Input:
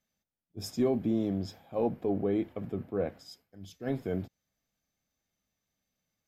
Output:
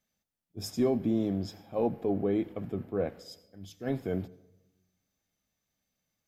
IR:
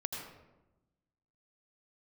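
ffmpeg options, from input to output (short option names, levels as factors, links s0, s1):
-filter_complex "[0:a]asplit=2[s0][s1];[1:a]atrim=start_sample=2205,highshelf=f=3700:g=11[s2];[s1][s2]afir=irnorm=-1:irlink=0,volume=0.0944[s3];[s0][s3]amix=inputs=2:normalize=0"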